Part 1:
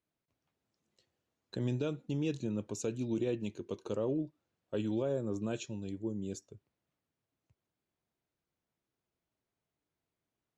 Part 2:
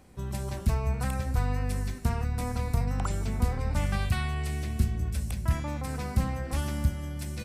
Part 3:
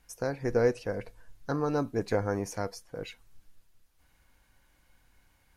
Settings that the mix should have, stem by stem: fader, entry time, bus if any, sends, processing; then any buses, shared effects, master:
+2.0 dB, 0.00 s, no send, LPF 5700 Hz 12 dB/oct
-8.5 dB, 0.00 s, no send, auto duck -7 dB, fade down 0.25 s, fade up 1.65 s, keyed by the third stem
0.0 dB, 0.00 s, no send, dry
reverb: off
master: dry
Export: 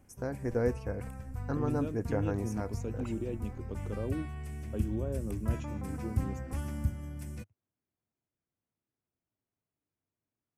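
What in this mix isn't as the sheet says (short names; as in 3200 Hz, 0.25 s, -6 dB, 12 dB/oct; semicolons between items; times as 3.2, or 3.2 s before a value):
stem 1 +2.0 dB -> -5.5 dB; stem 3 0.0 dB -> -6.0 dB; master: extra fifteen-band EQ 100 Hz +7 dB, 250 Hz +5 dB, 4000 Hz -11 dB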